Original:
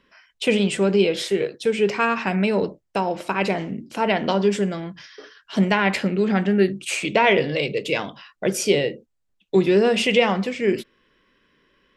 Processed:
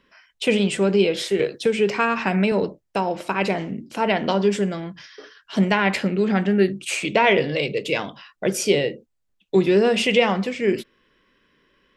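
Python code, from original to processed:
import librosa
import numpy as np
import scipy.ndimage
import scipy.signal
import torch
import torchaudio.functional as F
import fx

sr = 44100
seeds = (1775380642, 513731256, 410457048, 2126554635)

y = fx.band_squash(x, sr, depth_pct=70, at=(1.39, 2.52))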